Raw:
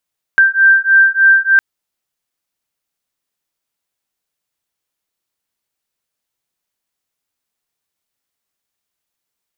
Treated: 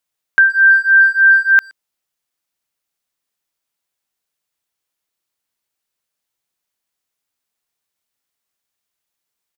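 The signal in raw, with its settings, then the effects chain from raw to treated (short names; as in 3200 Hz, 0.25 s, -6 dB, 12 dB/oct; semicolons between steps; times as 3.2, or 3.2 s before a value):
beating tones 1570 Hz, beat 3.3 Hz, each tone -10 dBFS 1.21 s
low shelf 500 Hz -3 dB; speakerphone echo 0.12 s, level -24 dB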